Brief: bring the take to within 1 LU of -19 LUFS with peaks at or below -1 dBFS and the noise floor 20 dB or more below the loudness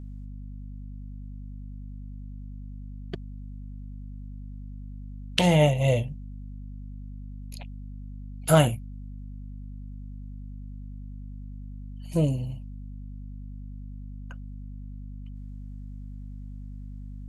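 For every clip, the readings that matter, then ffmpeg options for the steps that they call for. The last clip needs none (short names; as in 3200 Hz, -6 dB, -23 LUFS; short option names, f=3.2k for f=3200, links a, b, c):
hum 50 Hz; harmonics up to 250 Hz; hum level -37 dBFS; loudness -25.5 LUFS; peak -3.5 dBFS; loudness target -19.0 LUFS
-> -af "bandreject=f=50:t=h:w=4,bandreject=f=100:t=h:w=4,bandreject=f=150:t=h:w=4,bandreject=f=200:t=h:w=4,bandreject=f=250:t=h:w=4"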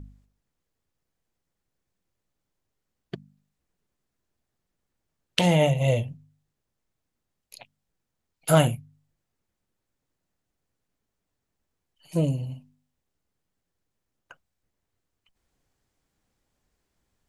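hum none; loudness -24.0 LUFS; peak -3.5 dBFS; loudness target -19.0 LUFS
-> -af "volume=5dB,alimiter=limit=-1dB:level=0:latency=1"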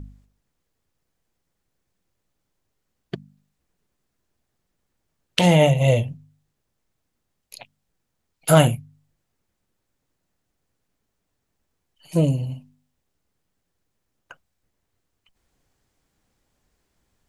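loudness -19.5 LUFS; peak -1.0 dBFS; noise floor -77 dBFS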